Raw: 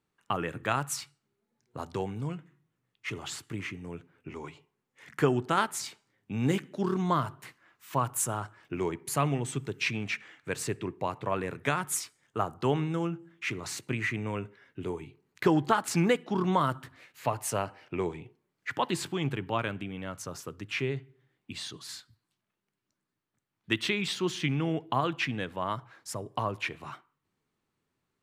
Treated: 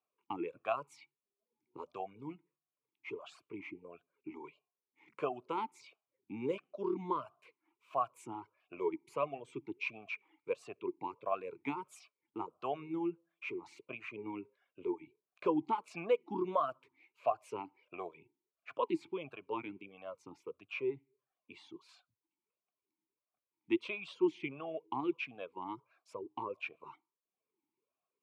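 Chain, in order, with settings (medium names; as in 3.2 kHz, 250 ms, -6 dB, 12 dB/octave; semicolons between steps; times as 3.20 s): reverb removal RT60 0.56 s; talking filter a-u 1.5 Hz; trim +3.5 dB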